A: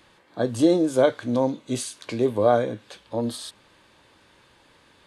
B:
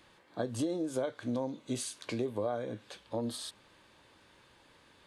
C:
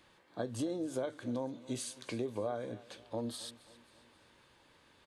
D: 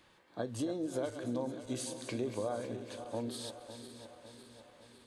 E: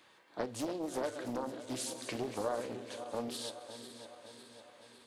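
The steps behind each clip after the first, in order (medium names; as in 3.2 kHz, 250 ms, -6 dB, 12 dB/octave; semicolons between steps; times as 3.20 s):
compression 8:1, threshold -25 dBFS, peak gain reduction 12.5 dB; trim -5 dB
feedback delay 268 ms, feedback 50%, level -19.5 dB; trim -3 dB
backward echo that repeats 277 ms, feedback 74%, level -10.5 dB
high-pass 390 Hz 6 dB/octave; reverberation, pre-delay 3 ms, DRR 10.5 dB; loudspeaker Doppler distortion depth 0.57 ms; trim +2.5 dB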